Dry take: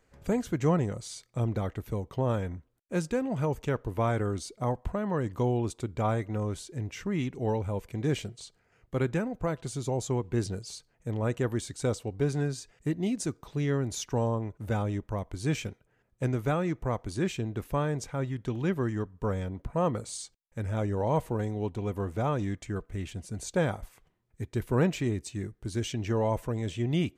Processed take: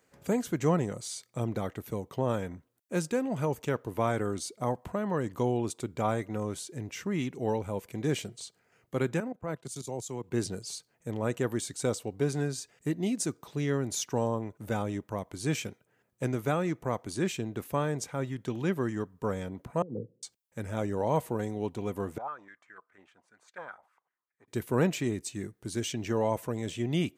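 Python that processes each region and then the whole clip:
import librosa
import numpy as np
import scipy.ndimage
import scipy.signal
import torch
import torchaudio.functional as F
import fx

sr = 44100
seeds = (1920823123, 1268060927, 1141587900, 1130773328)

y = fx.chain(x, sr, fx.level_steps(step_db=17),
    fx.high_shelf(hz=3800.0, db=7.5),
    fx.band_widen(depth_pct=100), at=(9.2, 10.31))
y = fx.chain(y, sr, fx.cheby1_bandpass(low_hz=110.0, high_hz=490.0, order=4),
    fx.over_compress(threshold_db=-35.0, ratio=-0.5), at=(19.82, 20.23))
y = fx.chain(y, sr, fx.halfwave_gain(db=-3.0),
    fx.filter_held_bandpass(hz=10.0, low_hz=850.0, high_hz=1800.0), at=(22.18, 24.48))
y = scipy.signal.sosfilt(scipy.signal.butter(2, 140.0, 'highpass', fs=sr, output='sos'), y)
y = fx.high_shelf(y, sr, hz=7900.0, db=8.5)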